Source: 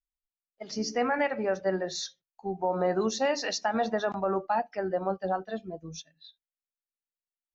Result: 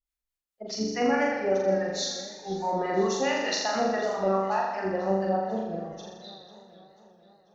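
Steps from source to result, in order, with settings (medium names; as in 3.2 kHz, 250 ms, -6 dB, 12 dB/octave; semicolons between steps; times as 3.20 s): harmonic tremolo 4.7 Hz, depth 100%, crossover 770 Hz; flutter echo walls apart 7.1 m, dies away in 1.1 s; modulated delay 492 ms, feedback 55%, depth 114 cents, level -18 dB; trim +3.5 dB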